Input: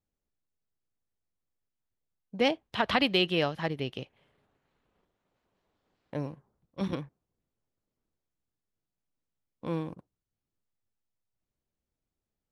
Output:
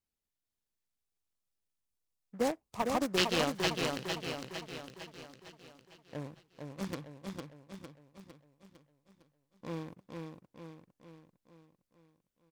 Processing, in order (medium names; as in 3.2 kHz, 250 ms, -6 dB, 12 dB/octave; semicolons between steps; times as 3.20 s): spectral selection erased 0.96–3.18 s, 1.3–4.7 kHz; treble shelf 3.9 kHz +12 dB; in parallel at -9 dB: bit crusher 4-bit; on the sum: feedback delay 455 ms, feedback 52%, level -4 dB; delay time shaken by noise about 1.2 kHz, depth 0.052 ms; trim -7.5 dB